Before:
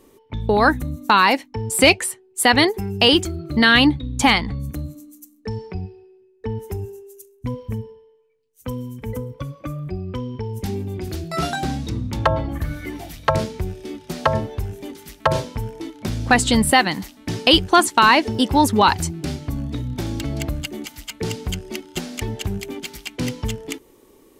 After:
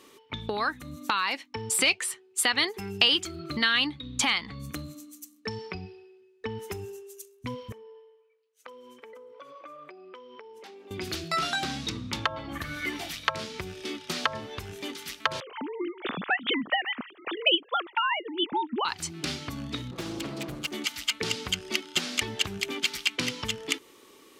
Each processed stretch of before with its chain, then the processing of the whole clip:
7.72–10.91 s: high-pass 450 Hz 24 dB/octave + tilt EQ -4 dB/octave + compression 10:1, threshold -41 dBFS
15.40–18.85 s: formants replaced by sine waves + bass shelf 460 Hz +8 dB
19.91–20.72 s: comb filter that takes the minimum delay 6.1 ms + peaking EQ 3.2 kHz -8.5 dB 3 oct + loudspeaker Doppler distortion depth 0.29 ms
whole clip: peaking EQ 1.2 kHz +8.5 dB 0.64 oct; compression 6:1, threshold -24 dBFS; frequency weighting D; trim -4 dB

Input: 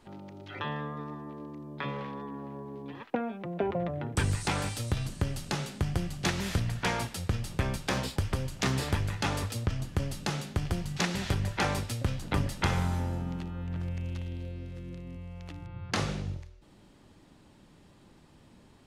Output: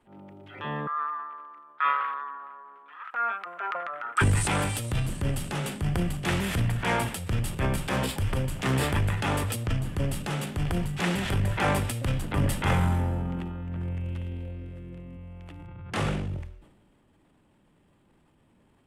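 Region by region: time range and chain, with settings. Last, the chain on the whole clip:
0.87–4.21 s: resonant high-pass 1.3 kHz, resonance Q 10 + treble shelf 8.6 kHz -11.5 dB
whole clip: high-order bell 5.1 kHz -9 dB 1 oct; transient shaper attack -6 dB, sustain +7 dB; three bands expanded up and down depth 40%; trim +4 dB

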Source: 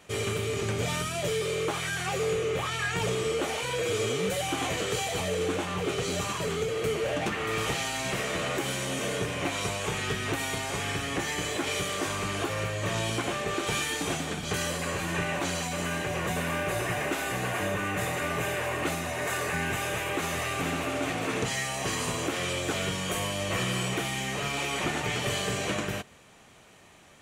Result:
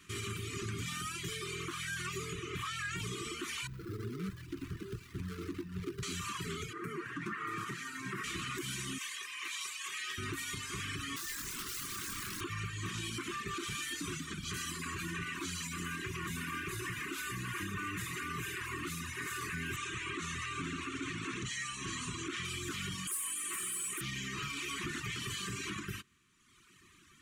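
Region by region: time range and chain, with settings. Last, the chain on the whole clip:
3.67–6.03 s: median filter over 41 samples + band-stop 1.1 kHz, Q 16
6.73–8.24 s: high-pass 130 Hz 24 dB/octave + resonant high shelf 2.2 kHz -9 dB, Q 1.5
8.98–10.18 s: high-pass 1 kHz + band-stop 1.4 kHz, Q 5.3
11.16–12.41 s: high-order bell 3 kHz -10.5 dB 1.1 oct + integer overflow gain 27.5 dB + doubling 24 ms -6 dB
19.76–22.45 s: low-pass 8.5 kHz 24 dB/octave + band-stop 4.9 kHz, Q 7.5
23.07–24.01 s: high-pass 390 Hz + resonant high shelf 7 kHz +11 dB, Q 3 + overload inside the chain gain 23 dB
whole clip: elliptic band-stop 370–1100 Hz, stop band 40 dB; reverb removal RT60 1.3 s; peak limiter -28 dBFS; trim -2 dB

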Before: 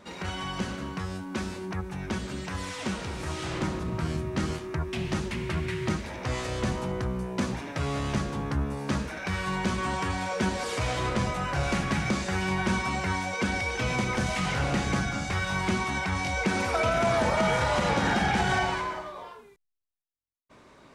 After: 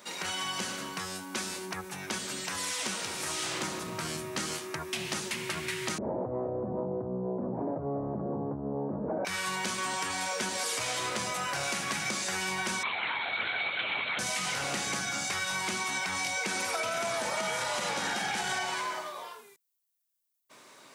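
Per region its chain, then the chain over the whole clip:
5.98–9.25 s: inverse Chebyshev low-pass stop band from 3.1 kHz, stop band 70 dB + level flattener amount 100%
12.83–14.19 s: tilt EQ +3 dB/octave + LPC vocoder at 8 kHz whisper
whole clip: high-pass 91 Hz 24 dB/octave; RIAA curve recording; compression, threshold -29 dBFS

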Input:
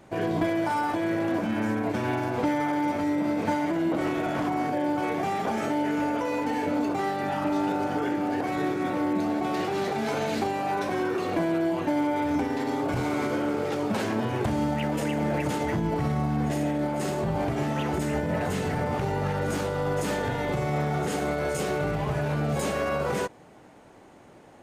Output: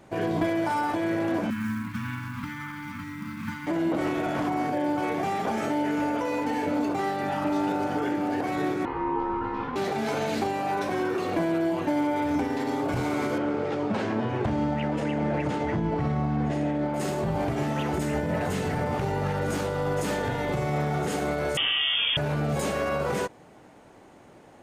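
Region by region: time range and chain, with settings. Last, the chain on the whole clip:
1.50–3.67 s: elliptic band-stop 240–1100 Hz + peaking EQ 8.4 kHz -8.5 dB 2.1 oct + companded quantiser 6-bit
8.85–9.76 s: tape spacing loss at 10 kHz 39 dB + doubling 21 ms -2.5 dB + ring modulator 640 Hz
13.38–16.94 s: Bessel low-pass 6.9 kHz + treble shelf 5.3 kHz -10.5 dB
21.57–22.17 s: frequency inversion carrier 3.4 kHz + level flattener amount 100%
whole clip: none

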